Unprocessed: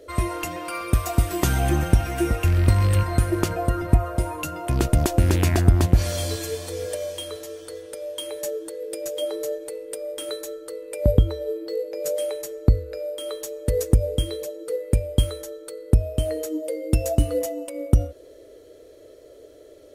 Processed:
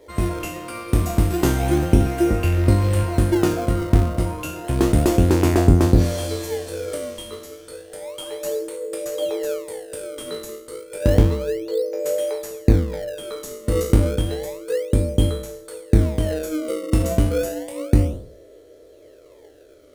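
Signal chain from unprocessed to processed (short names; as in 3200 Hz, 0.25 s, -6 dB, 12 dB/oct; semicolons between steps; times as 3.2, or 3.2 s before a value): spectral trails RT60 0.59 s; dynamic EQ 390 Hz, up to +6 dB, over -34 dBFS, Q 0.72; in parallel at -8 dB: decimation with a swept rate 30×, swing 160% 0.31 Hz; on the sum: gain -4.5 dB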